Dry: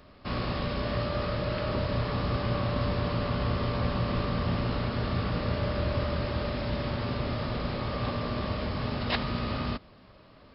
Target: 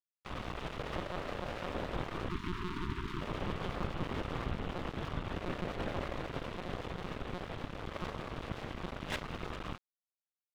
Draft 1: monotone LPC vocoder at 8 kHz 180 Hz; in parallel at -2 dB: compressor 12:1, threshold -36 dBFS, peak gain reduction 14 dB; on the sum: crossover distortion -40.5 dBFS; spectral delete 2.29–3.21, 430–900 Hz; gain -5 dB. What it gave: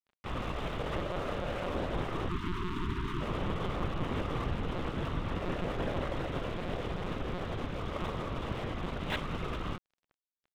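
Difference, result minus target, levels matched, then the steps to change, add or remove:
crossover distortion: distortion -11 dB
change: crossover distortion -29.5 dBFS

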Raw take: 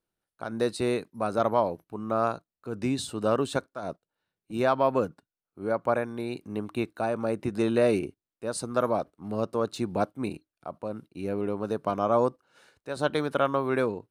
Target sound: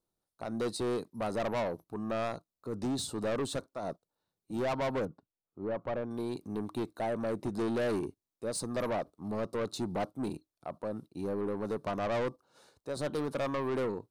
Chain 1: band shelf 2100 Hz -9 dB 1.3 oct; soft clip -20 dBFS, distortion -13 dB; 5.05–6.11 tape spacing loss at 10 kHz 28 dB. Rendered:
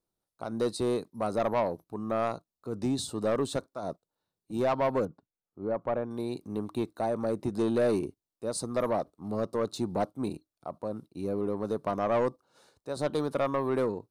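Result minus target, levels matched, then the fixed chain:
soft clip: distortion -7 dB
band shelf 2100 Hz -9 dB 1.3 oct; soft clip -28.5 dBFS, distortion -6 dB; 5.05–6.11 tape spacing loss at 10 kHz 28 dB

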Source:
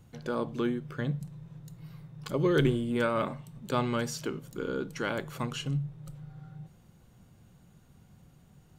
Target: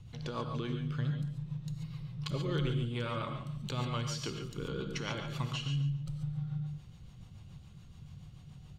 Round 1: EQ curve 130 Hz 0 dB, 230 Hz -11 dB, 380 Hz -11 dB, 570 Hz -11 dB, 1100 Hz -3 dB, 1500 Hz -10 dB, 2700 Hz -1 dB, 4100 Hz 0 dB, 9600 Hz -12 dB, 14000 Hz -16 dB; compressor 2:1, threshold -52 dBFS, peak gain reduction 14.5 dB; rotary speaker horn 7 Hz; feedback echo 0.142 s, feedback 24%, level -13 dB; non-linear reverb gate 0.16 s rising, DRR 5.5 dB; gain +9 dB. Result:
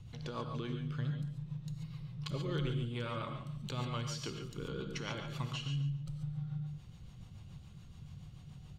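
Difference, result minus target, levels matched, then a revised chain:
compressor: peak gain reduction +3 dB
EQ curve 130 Hz 0 dB, 230 Hz -11 dB, 380 Hz -11 dB, 570 Hz -11 dB, 1100 Hz -3 dB, 1500 Hz -10 dB, 2700 Hz -1 dB, 4100 Hz 0 dB, 9600 Hz -12 dB, 14000 Hz -16 dB; compressor 2:1, threshold -46 dBFS, peak gain reduction 11.5 dB; rotary speaker horn 7 Hz; feedback echo 0.142 s, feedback 24%, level -13 dB; non-linear reverb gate 0.16 s rising, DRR 5.5 dB; gain +9 dB

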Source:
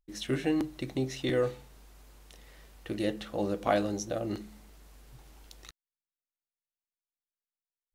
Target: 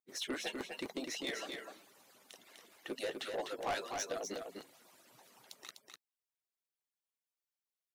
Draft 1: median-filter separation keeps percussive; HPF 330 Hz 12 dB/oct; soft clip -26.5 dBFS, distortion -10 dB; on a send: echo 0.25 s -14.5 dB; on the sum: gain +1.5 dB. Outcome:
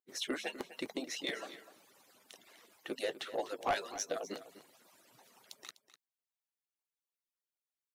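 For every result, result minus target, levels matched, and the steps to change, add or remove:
echo-to-direct -9.5 dB; soft clip: distortion -4 dB
change: echo 0.25 s -5 dB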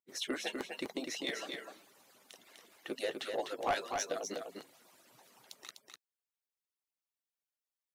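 soft clip: distortion -4 dB
change: soft clip -33.5 dBFS, distortion -6 dB

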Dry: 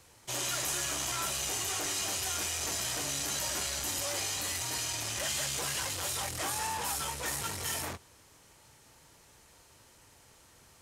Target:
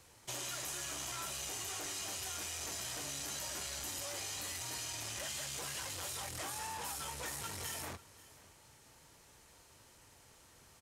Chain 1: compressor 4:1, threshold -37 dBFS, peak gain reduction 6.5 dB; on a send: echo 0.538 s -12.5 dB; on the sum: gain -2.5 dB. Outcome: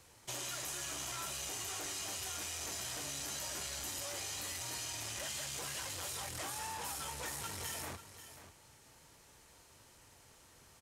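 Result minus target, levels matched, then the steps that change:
echo-to-direct +7.5 dB
change: echo 0.538 s -20 dB

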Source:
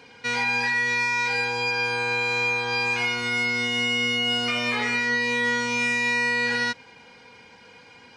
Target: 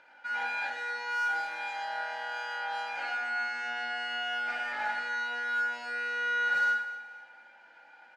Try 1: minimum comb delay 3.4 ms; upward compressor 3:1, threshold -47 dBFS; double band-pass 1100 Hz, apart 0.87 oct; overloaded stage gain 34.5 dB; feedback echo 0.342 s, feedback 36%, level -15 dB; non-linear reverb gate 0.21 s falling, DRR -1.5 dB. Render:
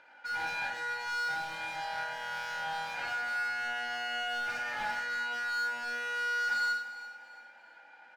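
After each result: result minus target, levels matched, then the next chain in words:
overloaded stage: distortion +19 dB; echo 99 ms late
minimum comb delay 3.4 ms; upward compressor 3:1, threshold -47 dBFS; double band-pass 1100 Hz, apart 0.87 oct; overloaded stage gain 28 dB; feedback echo 0.342 s, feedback 36%, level -15 dB; non-linear reverb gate 0.21 s falling, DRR -1.5 dB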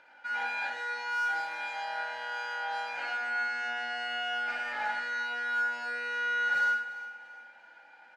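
echo 99 ms late
minimum comb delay 3.4 ms; upward compressor 3:1, threshold -47 dBFS; double band-pass 1100 Hz, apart 0.87 oct; overloaded stage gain 28 dB; feedback echo 0.243 s, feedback 36%, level -15 dB; non-linear reverb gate 0.21 s falling, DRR -1.5 dB

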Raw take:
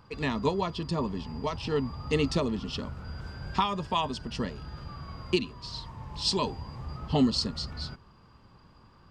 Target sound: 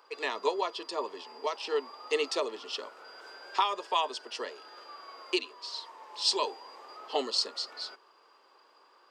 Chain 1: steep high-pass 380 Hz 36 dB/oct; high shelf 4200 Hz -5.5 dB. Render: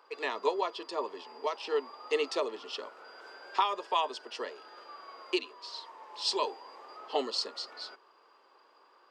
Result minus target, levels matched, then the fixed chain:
8000 Hz band -4.0 dB
steep high-pass 380 Hz 36 dB/oct; high shelf 4200 Hz +2 dB

